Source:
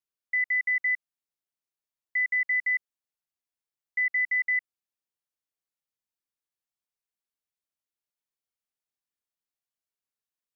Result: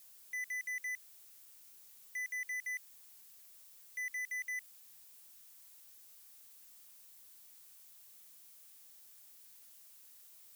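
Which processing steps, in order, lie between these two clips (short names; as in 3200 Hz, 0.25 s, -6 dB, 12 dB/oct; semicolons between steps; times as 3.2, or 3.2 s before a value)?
differentiator; power-law curve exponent 0.35; gain -4.5 dB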